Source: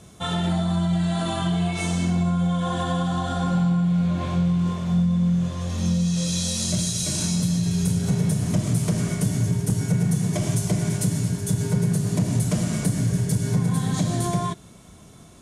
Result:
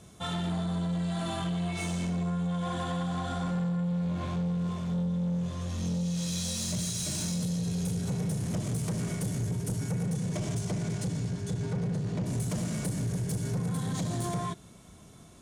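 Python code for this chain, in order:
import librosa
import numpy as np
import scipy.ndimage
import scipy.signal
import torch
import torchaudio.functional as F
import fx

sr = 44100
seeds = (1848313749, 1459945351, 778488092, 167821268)

y = fx.lowpass(x, sr, hz=fx.line((10.06, 9600.0), (12.25, 3900.0)), slope=12, at=(10.06, 12.25), fade=0.02)
y = 10.0 ** (-21.5 / 20.0) * np.tanh(y / 10.0 ** (-21.5 / 20.0))
y = y * 10.0 ** (-5.0 / 20.0)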